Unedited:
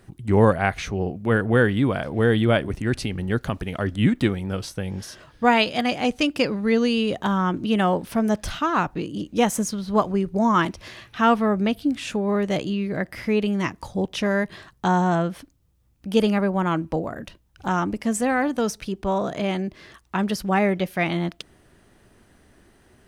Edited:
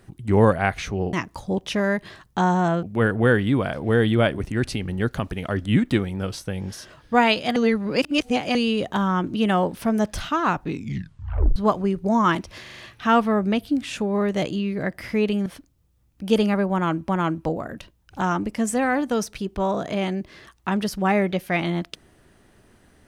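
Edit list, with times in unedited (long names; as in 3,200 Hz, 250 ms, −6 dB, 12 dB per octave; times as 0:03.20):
0:05.86–0:06.85: reverse
0:08.94: tape stop 0.92 s
0:10.92: stutter 0.04 s, 5 plays
0:13.60–0:15.30: move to 0:01.13
0:16.56–0:16.93: repeat, 2 plays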